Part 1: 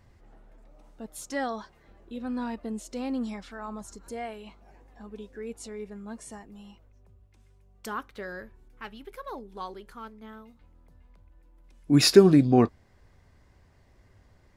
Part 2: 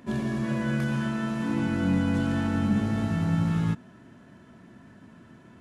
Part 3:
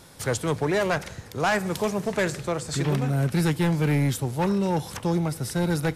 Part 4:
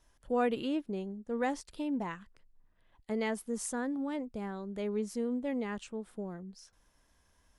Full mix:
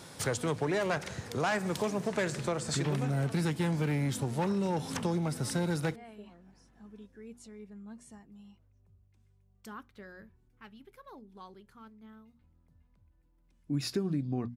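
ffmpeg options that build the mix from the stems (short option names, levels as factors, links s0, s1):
-filter_complex "[0:a]bandreject=f=60:t=h:w=6,bandreject=f=120:t=h:w=6,bandreject=f=180:t=h:w=6,bandreject=f=240:t=h:w=6,asubboost=boost=3.5:cutoff=230,adelay=1800,volume=0.282[s0];[1:a]adelay=1450,volume=0.141[s1];[2:a]equalizer=f=12000:w=4.6:g=-13.5,volume=1.12[s2];[3:a]asplit=2[s3][s4];[s4]adelay=3.7,afreqshift=1.4[s5];[s3][s5]amix=inputs=2:normalize=1,volume=0.335[s6];[s0][s1][s2][s6]amix=inputs=4:normalize=0,highpass=92,acompressor=threshold=0.0282:ratio=2.5"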